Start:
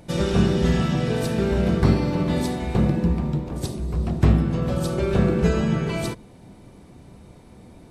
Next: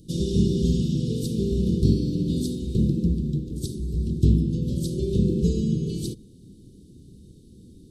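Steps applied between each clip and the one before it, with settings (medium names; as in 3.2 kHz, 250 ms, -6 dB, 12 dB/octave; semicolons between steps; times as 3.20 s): inverse Chebyshev band-stop 660–2200 Hz, stop band 40 dB; trim -1.5 dB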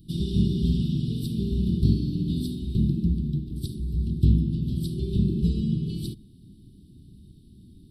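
static phaser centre 1.9 kHz, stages 6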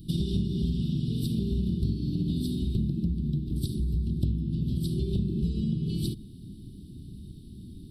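compression 6:1, threshold -31 dBFS, peak gain reduction 16.5 dB; trim +6 dB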